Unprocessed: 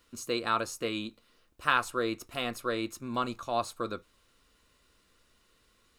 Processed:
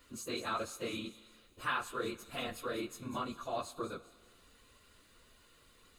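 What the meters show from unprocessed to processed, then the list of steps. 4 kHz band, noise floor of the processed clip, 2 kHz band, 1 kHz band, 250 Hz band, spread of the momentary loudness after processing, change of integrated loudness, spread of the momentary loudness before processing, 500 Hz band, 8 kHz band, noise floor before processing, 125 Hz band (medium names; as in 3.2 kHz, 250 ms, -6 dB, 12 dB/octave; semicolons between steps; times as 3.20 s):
-6.5 dB, -65 dBFS, -8.0 dB, -7.5 dB, -6.5 dB, 7 LU, -7.0 dB, 10 LU, -6.5 dB, -5.0 dB, -68 dBFS, -5.5 dB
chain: phase randomisation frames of 50 ms; band-stop 5.5 kHz, Q 7.7; compression 1.5:1, threshold -57 dBFS, peak gain reduction 12.5 dB; feedback echo behind a high-pass 199 ms, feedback 43%, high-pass 4.7 kHz, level -9.5 dB; Schroeder reverb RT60 1.7 s, combs from 32 ms, DRR 18 dB; trim +3.5 dB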